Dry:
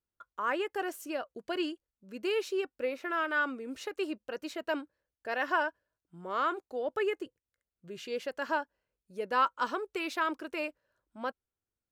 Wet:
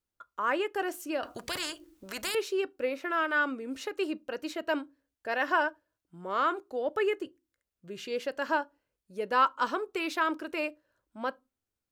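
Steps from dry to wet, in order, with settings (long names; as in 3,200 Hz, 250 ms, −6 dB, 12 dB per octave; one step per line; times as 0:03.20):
on a send at −19 dB: convolution reverb RT60 0.25 s, pre-delay 3 ms
0:01.23–0:02.35: on the sum: every bin compressed towards the loudest bin 4 to 1
level +2.5 dB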